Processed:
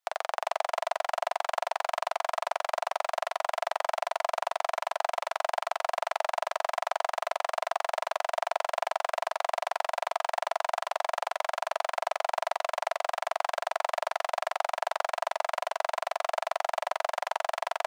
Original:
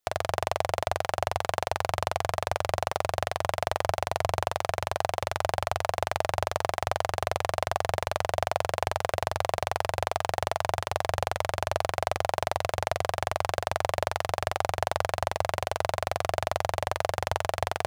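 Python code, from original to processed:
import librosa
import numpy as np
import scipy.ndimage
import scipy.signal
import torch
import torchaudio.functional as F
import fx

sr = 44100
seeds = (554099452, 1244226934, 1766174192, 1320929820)

y = scipy.signal.sosfilt(scipy.signal.butter(4, 710.0, 'highpass', fs=sr, output='sos'), x)
y = fx.tilt_eq(y, sr, slope=-2.0)
y = y + 10.0 ** (-5.5 / 20.0) * np.pad(y, (int(397 * sr / 1000.0), 0))[:len(y)]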